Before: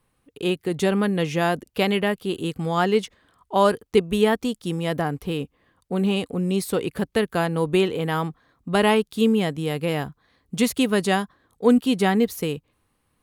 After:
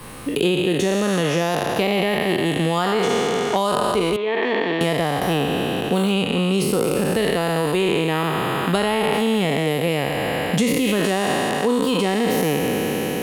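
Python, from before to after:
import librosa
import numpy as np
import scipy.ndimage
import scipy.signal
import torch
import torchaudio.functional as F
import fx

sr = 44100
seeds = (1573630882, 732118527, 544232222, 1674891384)

p1 = fx.spec_trails(x, sr, decay_s=2.37)
p2 = fx.dynamic_eq(p1, sr, hz=1500.0, q=4.7, threshold_db=-39.0, ratio=4.0, max_db=-6)
p3 = fx.over_compress(p2, sr, threshold_db=-20.0, ratio=-1.0)
p4 = p2 + (p3 * 10.0 ** (2.5 / 20.0))
p5 = fx.cabinet(p4, sr, low_hz=420.0, low_slope=12, high_hz=3100.0, hz=(480.0, 780.0, 1300.0, 2900.0), db=(-4, -9, -9, -8), at=(4.16, 4.81))
p6 = fx.band_squash(p5, sr, depth_pct=100)
y = p6 * 10.0 ** (-8.0 / 20.0)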